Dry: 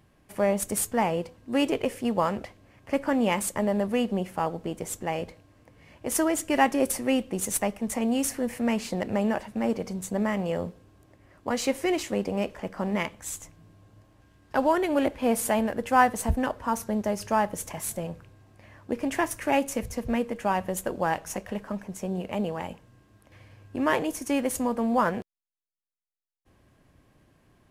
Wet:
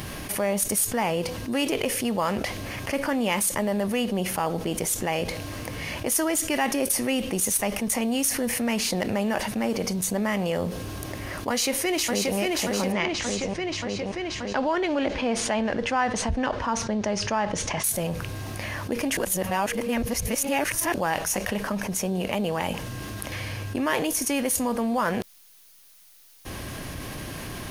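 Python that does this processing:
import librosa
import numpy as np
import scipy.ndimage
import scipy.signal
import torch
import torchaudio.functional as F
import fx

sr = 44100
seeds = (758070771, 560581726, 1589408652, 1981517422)

y = fx.echo_throw(x, sr, start_s=11.5, length_s=0.87, ms=580, feedback_pct=55, wet_db=-3.5)
y = fx.bessel_lowpass(y, sr, hz=4400.0, order=6, at=(12.92, 17.84))
y = fx.edit(y, sr, fx.reverse_span(start_s=19.17, length_s=1.77), tone=tone)
y = fx.high_shelf(y, sr, hz=2400.0, db=11.0)
y = fx.notch(y, sr, hz=7600.0, q=6.0)
y = fx.env_flatten(y, sr, amount_pct=70)
y = F.gain(torch.from_numpy(y), -7.5).numpy()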